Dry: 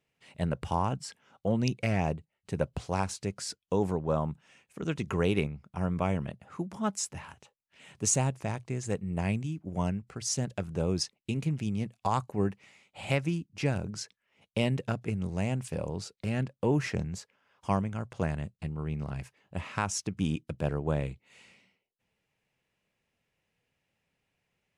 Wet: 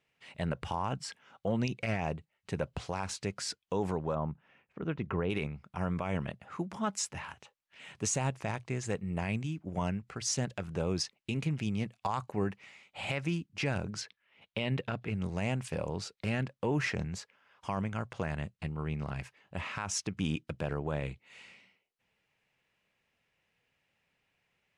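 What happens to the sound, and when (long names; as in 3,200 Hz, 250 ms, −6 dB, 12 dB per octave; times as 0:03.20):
0:04.15–0:05.30: head-to-tape spacing loss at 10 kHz 40 dB
0:14.01–0:15.15: high shelf with overshoot 4,800 Hz −6.5 dB, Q 1.5
whole clip: low-pass filter 1,400 Hz 6 dB per octave; tilt shelving filter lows −7.5 dB, about 1,100 Hz; brickwall limiter −27.5 dBFS; level +5.5 dB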